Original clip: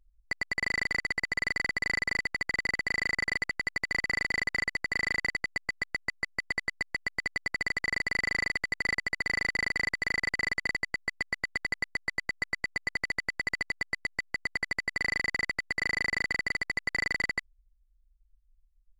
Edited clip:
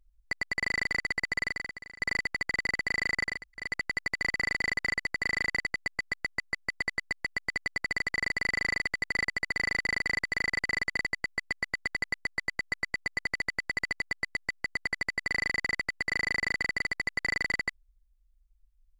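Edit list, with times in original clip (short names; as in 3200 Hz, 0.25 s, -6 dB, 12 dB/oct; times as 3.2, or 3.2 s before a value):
1.41–2 fade out quadratic, to -20.5 dB
3.35 insert room tone 0.30 s, crossfade 0.24 s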